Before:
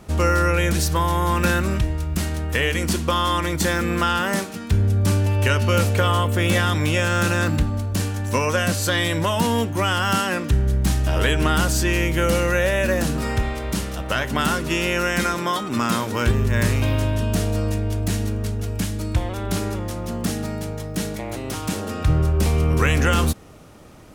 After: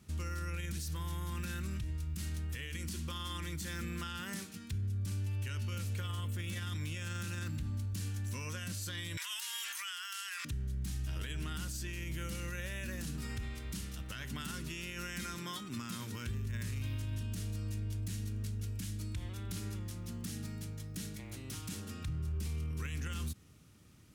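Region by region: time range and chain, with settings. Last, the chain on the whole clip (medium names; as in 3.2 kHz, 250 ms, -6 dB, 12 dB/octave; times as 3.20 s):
9.17–10.45 s: high-pass 1.3 kHz 24 dB/octave + level flattener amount 100%
whole clip: high-pass 72 Hz 12 dB/octave; amplifier tone stack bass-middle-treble 6-0-2; peak limiter -34 dBFS; trim +3 dB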